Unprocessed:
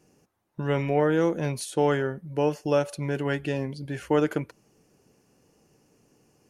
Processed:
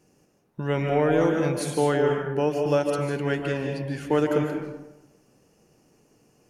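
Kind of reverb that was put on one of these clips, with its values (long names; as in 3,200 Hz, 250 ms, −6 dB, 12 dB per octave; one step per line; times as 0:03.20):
comb and all-pass reverb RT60 1 s, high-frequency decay 0.55×, pre-delay 110 ms, DRR 2 dB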